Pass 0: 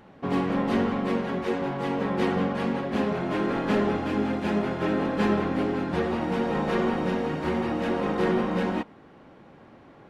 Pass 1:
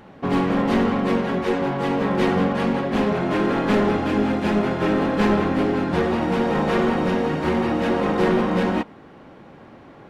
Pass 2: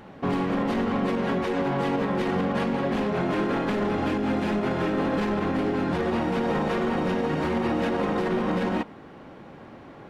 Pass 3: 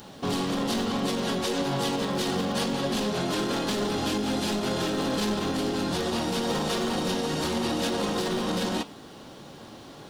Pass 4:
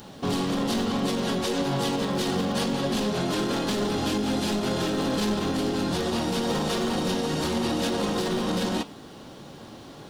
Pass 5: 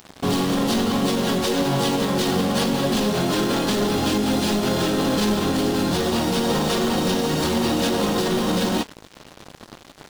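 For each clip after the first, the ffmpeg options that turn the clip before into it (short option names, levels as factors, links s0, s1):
-af "aeval=exprs='clip(val(0),-1,0.075)':c=same,volume=2"
-af "alimiter=limit=0.133:level=0:latency=1:release=67"
-filter_complex "[0:a]asplit=2[s0][s1];[s1]asoftclip=type=tanh:threshold=0.0299,volume=0.562[s2];[s0][s2]amix=inputs=2:normalize=0,flanger=delay=6.8:depth=2.7:regen=83:speed=1.8:shape=sinusoidal,aexciter=amount=7.6:drive=4:freq=3200"
-af "lowshelf=f=340:g=3"
-af "acrusher=bits=5:mix=0:aa=0.5,volume=1.78"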